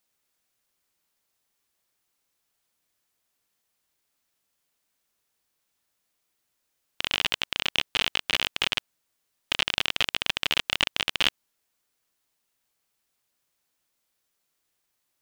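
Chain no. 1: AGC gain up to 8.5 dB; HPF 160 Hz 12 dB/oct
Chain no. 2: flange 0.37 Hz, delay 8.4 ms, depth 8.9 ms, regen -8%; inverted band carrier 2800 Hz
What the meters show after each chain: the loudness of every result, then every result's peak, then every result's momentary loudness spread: -22.5, -36.0 LUFS; -2.0, -12.0 dBFS; 3, 3 LU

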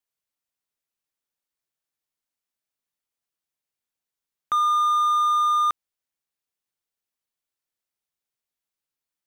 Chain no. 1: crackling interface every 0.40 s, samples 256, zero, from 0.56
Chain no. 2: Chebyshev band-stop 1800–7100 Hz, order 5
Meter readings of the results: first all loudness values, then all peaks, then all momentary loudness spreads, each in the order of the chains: -20.5, -20.5 LUFS; -15.5, -17.0 dBFS; 6, 6 LU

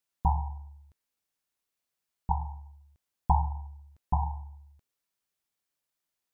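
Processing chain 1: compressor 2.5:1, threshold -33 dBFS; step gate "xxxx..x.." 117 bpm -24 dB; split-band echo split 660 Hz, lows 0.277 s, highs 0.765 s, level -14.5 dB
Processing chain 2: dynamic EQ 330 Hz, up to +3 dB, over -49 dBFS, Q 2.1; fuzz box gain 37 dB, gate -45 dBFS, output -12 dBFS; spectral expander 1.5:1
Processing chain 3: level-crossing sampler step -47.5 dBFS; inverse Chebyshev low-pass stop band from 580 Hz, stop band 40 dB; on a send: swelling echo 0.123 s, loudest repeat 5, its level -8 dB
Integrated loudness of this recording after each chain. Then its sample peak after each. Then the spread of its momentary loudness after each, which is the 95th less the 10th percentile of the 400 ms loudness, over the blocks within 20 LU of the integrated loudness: -44.0, -21.5, -36.0 LUFS; -19.5, -11.0, -16.5 dBFS; 23, 14, 11 LU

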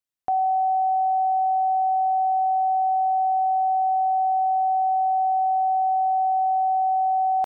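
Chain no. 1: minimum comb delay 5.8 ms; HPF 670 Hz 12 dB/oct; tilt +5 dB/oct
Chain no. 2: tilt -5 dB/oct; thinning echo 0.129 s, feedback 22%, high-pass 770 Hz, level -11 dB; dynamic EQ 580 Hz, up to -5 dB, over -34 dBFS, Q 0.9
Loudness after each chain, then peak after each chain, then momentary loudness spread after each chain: -23.5, -25.5 LUFS; -18.0, -11.5 dBFS; 0, 0 LU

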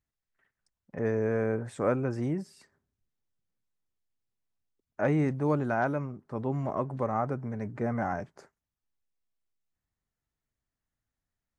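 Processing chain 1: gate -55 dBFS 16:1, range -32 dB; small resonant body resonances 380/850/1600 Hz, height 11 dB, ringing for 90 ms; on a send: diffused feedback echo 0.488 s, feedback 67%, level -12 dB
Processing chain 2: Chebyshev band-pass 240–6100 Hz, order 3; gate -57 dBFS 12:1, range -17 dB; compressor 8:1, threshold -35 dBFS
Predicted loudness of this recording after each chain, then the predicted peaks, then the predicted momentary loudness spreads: -29.5, -40.5 LUFS; -12.5, -25.5 dBFS; 20, 7 LU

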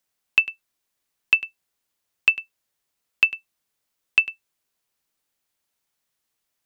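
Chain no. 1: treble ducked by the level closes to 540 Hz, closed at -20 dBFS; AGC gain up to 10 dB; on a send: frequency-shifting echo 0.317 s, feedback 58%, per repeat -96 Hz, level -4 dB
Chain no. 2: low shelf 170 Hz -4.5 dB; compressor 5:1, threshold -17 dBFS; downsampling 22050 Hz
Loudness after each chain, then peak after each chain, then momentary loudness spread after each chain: -27.5, -26.0 LUFS; -1.0, -5.0 dBFS; 15, 9 LU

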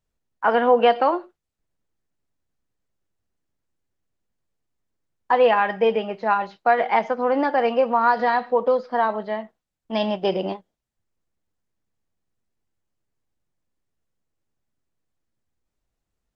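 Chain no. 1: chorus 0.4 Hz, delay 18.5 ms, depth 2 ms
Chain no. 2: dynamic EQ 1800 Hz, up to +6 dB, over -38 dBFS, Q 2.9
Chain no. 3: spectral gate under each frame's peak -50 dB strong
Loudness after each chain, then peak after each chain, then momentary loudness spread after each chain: -24.0, -20.5, -21.0 LUFS; -7.0, -4.5, -5.5 dBFS; 10, 12, 11 LU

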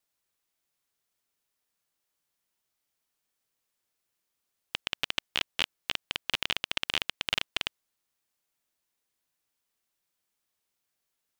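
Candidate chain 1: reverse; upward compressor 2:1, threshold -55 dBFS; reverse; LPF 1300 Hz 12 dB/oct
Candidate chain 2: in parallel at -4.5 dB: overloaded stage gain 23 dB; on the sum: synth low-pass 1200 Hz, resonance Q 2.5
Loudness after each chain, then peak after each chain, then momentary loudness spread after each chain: -43.0, -37.0 LUFS; -17.5, -13.5 dBFS; 5, 5 LU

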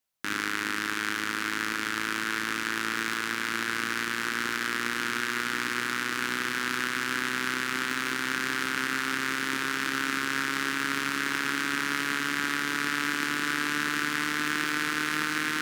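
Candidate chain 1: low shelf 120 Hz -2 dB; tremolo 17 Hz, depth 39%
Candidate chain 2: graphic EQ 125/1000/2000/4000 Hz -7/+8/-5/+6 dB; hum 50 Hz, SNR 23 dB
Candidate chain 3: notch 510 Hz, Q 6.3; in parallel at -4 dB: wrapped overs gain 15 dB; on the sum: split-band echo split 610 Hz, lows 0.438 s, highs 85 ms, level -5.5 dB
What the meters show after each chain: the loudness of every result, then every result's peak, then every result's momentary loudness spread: -30.0, -27.0, -23.5 LUFS; -10.0, -8.0, -7.0 dBFS; 2, 2, 2 LU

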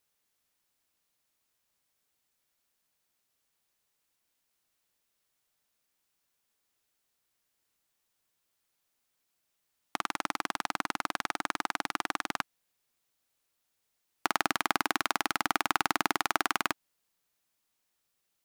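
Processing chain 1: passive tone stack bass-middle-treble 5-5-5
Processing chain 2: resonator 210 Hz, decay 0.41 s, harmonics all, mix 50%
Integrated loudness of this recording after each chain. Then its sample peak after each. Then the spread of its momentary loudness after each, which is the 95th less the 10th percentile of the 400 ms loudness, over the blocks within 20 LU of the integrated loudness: -43.0, -37.5 LUFS; -14.0, -11.0 dBFS; 7, 7 LU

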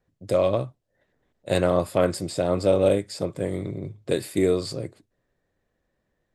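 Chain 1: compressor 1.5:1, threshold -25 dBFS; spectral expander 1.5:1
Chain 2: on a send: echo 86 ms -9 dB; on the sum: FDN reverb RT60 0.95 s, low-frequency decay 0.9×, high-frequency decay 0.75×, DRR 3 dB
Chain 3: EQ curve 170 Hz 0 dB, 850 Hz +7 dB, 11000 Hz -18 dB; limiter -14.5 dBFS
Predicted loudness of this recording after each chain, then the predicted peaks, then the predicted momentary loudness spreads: -27.0, -22.0, -26.5 LUFS; -11.0, -6.0, -14.5 dBFS; 16, 12, 9 LU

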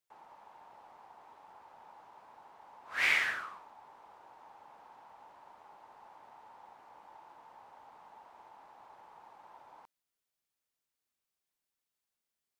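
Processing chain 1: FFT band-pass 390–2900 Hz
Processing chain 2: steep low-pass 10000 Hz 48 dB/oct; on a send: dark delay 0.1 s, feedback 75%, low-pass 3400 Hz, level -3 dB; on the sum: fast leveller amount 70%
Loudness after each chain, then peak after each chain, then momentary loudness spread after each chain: -31.0, -31.5 LUFS; -15.0, -13.0 dBFS; 15, 18 LU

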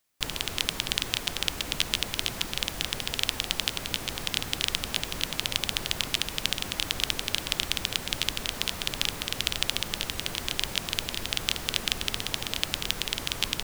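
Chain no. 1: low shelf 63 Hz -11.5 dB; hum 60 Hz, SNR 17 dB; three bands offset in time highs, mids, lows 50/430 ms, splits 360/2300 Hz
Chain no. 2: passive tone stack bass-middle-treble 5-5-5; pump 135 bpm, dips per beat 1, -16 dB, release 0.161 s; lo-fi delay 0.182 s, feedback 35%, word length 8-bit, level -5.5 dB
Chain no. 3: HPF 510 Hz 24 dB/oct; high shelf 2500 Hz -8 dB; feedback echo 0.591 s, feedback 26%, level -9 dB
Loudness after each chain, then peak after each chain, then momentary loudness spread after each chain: -30.0, -36.0, -33.5 LUFS; -6.0, -10.0, -8.0 dBFS; 3, 3, 3 LU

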